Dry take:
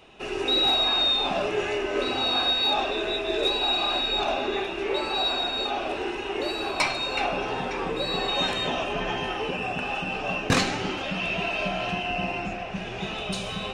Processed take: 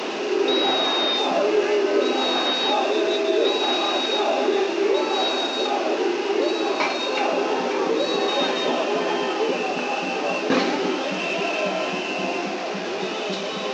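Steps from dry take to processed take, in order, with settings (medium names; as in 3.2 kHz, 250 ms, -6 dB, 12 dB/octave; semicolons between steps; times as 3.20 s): one-bit delta coder 32 kbps, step -26 dBFS; high-pass 270 Hz 24 dB/octave; tilt shelf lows +6 dB, about 750 Hz; band-stop 720 Hz, Q 16; in parallel at +0.5 dB: peak limiter -19 dBFS, peak gain reduction 8.5 dB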